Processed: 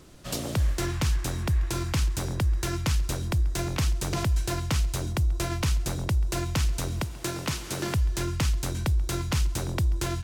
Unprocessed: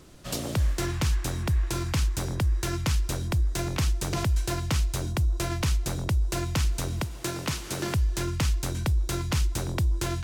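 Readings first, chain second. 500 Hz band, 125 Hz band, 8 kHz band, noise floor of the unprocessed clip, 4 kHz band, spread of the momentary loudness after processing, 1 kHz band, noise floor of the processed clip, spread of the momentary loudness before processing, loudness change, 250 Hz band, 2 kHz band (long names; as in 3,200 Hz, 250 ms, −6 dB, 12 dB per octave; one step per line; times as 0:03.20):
0.0 dB, 0.0 dB, 0.0 dB, −36 dBFS, 0.0 dB, 3 LU, 0.0 dB, −37 dBFS, 3 LU, 0.0 dB, 0.0 dB, 0.0 dB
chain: repeating echo 136 ms, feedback 53%, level −22.5 dB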